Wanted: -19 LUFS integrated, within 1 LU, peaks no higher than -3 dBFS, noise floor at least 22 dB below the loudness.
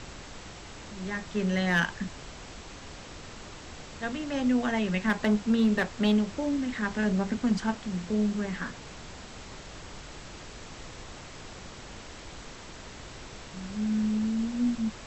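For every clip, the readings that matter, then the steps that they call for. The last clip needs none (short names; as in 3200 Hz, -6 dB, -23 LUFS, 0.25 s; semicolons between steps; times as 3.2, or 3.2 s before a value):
clipped 0.2%; flat tops at -18.0 dBFS; noise floor -45 dBFS; noise floor target -51 dBFS; loudness -28.5 LUFS; peak -18.0 dBFS; loudness target -19.0 LUFS
-> clip repair -18 dBFS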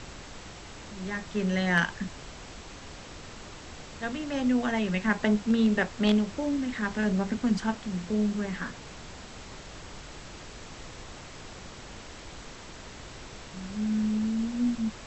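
clipped 0.0%; noise floor -45 dBFS; noise floor target -51 dBFS
-> noise print and reduce 6 dB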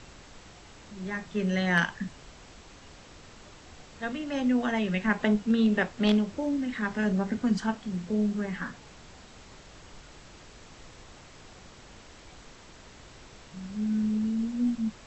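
noise floor -51 dBFS; loudness -28.5 LUFS; peak -9.0 dBFS; loudness target -19.0 LUFS
-> gain +9.5 dB; limiter -3 dBFS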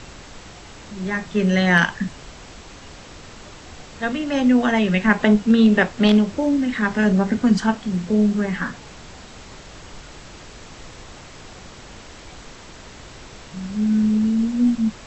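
loudness -19.0 LUFS; peak -3.0 dBFS; noise floor -42 dBFS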